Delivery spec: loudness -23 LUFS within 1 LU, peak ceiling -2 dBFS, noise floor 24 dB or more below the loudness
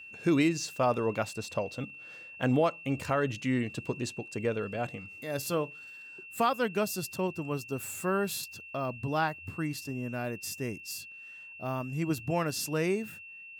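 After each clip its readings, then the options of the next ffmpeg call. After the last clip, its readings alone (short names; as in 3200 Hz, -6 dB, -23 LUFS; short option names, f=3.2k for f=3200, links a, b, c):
steady tone 2700 Hz; tone level -45 dBFS; loudness -32.0 LUFS; peak -16.0 dBFS; loudness target -23.0 LUFS
-> -af "bandreject=f=2.7k:w=30"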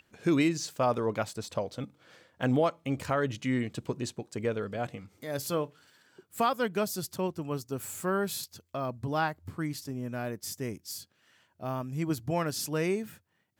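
steady tone none; loudness -32.5 LUFS; peak -16.0 dBFS; loudness target -23.0 LUFS
-> -af "volume=9.5dB"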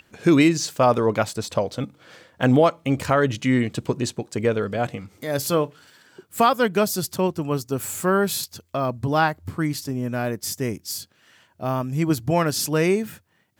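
loudness -23.0 LUFS; peak -6.5 dBFS; noise floor -62 dBFS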